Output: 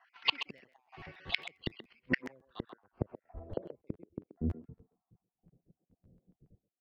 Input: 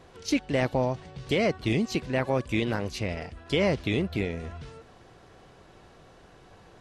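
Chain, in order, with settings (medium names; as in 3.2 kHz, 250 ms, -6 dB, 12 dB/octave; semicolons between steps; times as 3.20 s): random holes in the spectrogram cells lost 55%; careless resampling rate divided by 6×, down none, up hold; low-pass sweep 2.3 kHz -> 190 Hz, 1.94–4.81 s; dynamic bell 3.4 kHz, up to +4 dB, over -43 dBFS, Q 1.5; inverted gate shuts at -23 dBFS, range -36 dB; bass shelf 120 Hz -5.5 dB; speakerphone echo 130 ms, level -8 dB; low-pass sweep 5.1 kHz -> 540 Hz, 4.17–5.66 s; crackling interface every 0.14 s, samples 512, repeat, from 0.57 s; three bands expanded up and down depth 70%; trim +2.5 dB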